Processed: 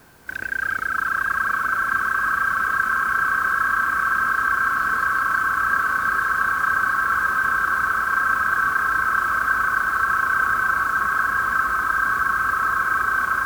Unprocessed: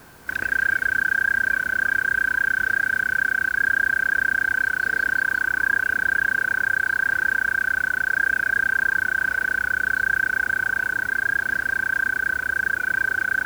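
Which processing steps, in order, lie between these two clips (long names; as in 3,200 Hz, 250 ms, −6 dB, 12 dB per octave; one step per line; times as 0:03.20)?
feedback delay with all-pass diffusion 923 ms, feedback 73%, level −4 dB
delay with pitch and tempo change per echo 284 ms, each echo −3 semitones, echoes 2
level −3.5 dB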